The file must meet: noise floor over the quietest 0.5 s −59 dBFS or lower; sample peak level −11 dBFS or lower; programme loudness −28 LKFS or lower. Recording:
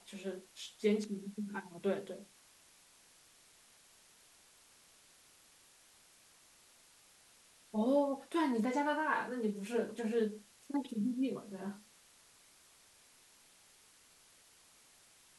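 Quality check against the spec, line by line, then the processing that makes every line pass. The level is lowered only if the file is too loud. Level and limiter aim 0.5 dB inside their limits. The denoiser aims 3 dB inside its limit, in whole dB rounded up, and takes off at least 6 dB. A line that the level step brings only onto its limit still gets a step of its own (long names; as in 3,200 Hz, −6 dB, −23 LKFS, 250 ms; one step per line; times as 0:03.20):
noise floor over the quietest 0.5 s −64 dBFS: in spec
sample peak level −19.0 dBFS: in spec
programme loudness −37.0 LKFS: in spec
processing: no processing needed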